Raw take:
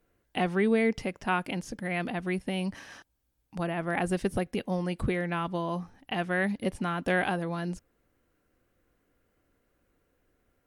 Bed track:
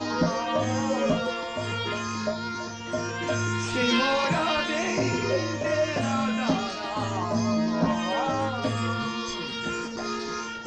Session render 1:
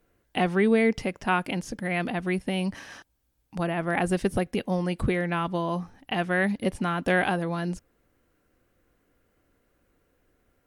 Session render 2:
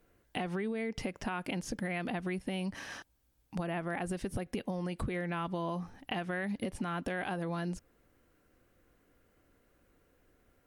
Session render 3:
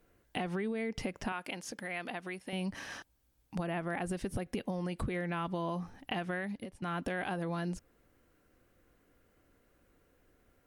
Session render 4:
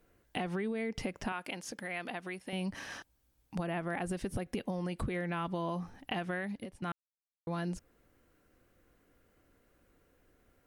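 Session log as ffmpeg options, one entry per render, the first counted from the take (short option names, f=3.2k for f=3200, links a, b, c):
-af "volume=3.5dB"
-af "alimiter=limit=-20.5dB:level=0:latency=1:release=122,acompressor=threshold=-32dB:ratio=6"
-filter_complex "[0:a]asettb=1/sr,asplit=3[a][b][c];[a]atrim=end=1.324[d];[b]atrim=start=1.32:end=2.53,asetpts=PTS-STARTPTS,afade=t=in:d=0.004:c=qsin,afade=t=out:st=1.206:d=0.004:c=qsin,highpass=f=600:p=1[e];[c]atrim=start=2.526[f];[d][e]acrossfade=d=0.004:c1=hsin:c2=qsin[g];[g][f]acrossfade=d=0.004:c1=qsin:c2=hsin,asplit=2[h][i];[h]atrim=end=6.82,asetpts=PTS-STARTPTS,afade=t=out:st=6.31:d=0.51:silence=0.133352[j];[i]atrim=start=6.82,asetpts=PTS-STARTPTS,afade=t=in:d=0.004:c=hsin:silence=0.133352[k];[j][k]concat=n=2:v=0:a=1"
-filter_complex "[0:a]asplit=3[a][b][c];[a]atrim=end=6.92,asetpts=PTS-STARTPTS,afade=t=out:st=6.916:d=0.004:c=hsin[d];[b]atrim=start=6.92:end=7.47,asetpts=PTS-STARTPTS,volume=0[e];[c]atrim=start=7.47,asetpts=PTS-STARTPTS,afade=t=in:d=0.004:c=hsin[f];[d][e][f]concat=n=3:v=0:a=1"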